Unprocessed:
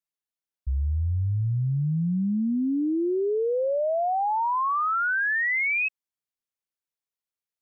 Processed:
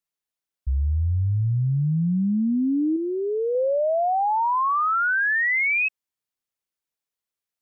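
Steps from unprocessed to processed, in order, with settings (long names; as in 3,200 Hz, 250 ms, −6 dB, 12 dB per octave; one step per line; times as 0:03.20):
0:02.96–0:03.55: parametric band 350 Hz −4.5 dB 0.81 octaves
level +3 dB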